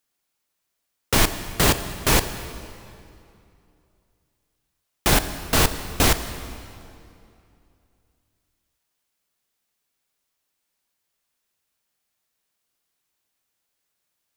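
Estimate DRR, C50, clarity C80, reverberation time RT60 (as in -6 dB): 10.0 dB, 11.0 dB, 12.0 dB, 2.6 s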